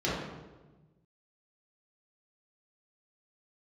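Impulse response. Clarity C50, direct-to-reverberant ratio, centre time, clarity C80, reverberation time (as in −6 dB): −1.0 dB, −9.0 dB, 79 ms, 2.5 dB, 1.2 s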